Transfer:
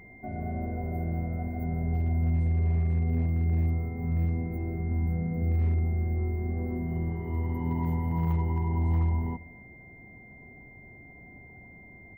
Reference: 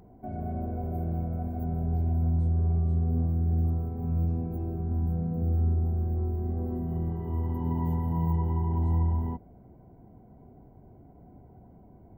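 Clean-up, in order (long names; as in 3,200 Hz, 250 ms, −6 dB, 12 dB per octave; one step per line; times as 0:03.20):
clipped peaks rebuilt −20 dBFS
notch filter 2,100 Hz, Q 30
echo removal 264 ms −22.5 dB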